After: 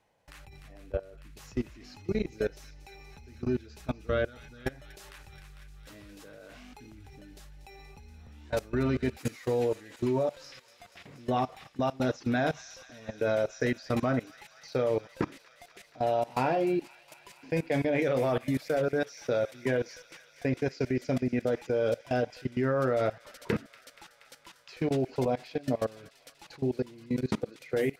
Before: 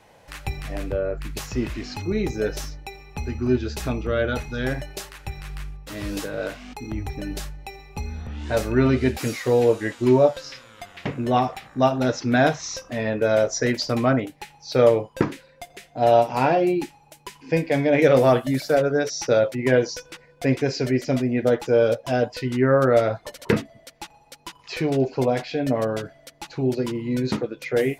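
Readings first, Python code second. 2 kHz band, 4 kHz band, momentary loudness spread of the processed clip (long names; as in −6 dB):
−9.0 dB, −11.5 dB, 21 LU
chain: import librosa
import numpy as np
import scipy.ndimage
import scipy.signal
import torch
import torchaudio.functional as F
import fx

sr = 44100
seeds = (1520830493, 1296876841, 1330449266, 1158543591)

p1 = fx.level_steps(x, sr, step_db=23)
p2 = p1 + fx.echo_wet_highpass(p1, sr, ms=238, feedback_pct=83, hz=2200.0, wet_db=-14.0, dry=0)
y = F.gain(torch.from_numpy(p2), -3.5).numpy()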